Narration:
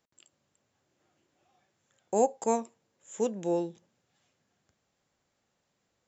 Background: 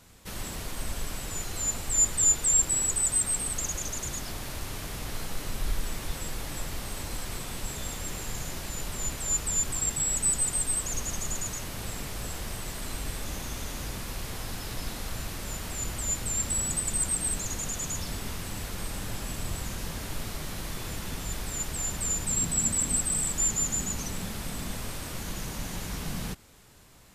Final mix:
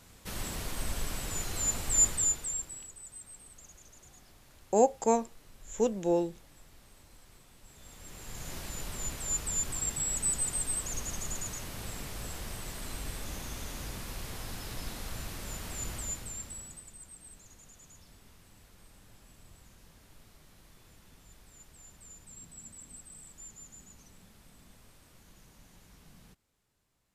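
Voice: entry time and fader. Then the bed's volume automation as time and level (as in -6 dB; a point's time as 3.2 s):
2.60 s, +1.5 dB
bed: 2.06 s -1 dB
2.92 s -22 dB
7.61 s -22 dB
8.54 s -4.5 dB
15.95 s -4.5 dB
16.97 s -22.5 dB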